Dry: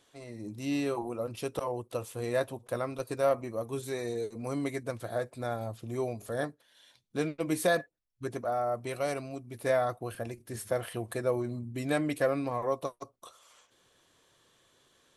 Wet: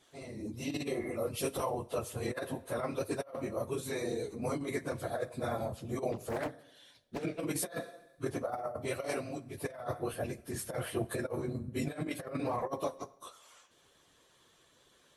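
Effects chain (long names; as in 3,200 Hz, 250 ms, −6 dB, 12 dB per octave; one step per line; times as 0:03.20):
random phases in long frames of 50 ms
0:00.80–0:01.13: healed spectral selection 630–2,300 Hz before
0:01.14–0:01.70: high-shelf EQ 6,800 Hz +8.5 dB
0:11.00–0:12.21: transient designer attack +2 dB, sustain −3 dB
coupled-rooms reverb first 0.75 s, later 1.9 s, DRR 14 dB
compressor whose output falls as the input rises −32 dBFS, ratio −0.5
harmonic and percussive parts rebalanced harmonic −4 dB
0:06.12–0:07.23: highs frequency-modulated by the lows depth 0.66 ms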